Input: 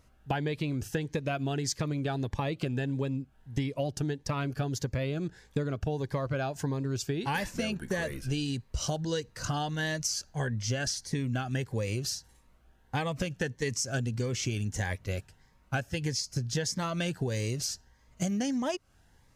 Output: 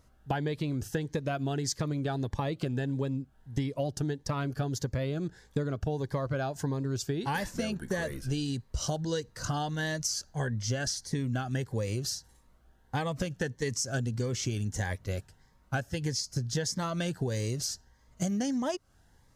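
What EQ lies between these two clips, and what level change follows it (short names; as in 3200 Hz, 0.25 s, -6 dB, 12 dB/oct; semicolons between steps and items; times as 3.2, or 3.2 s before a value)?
bell 2500 Hz -6.5 dB 0.52 oct; 0.0 dB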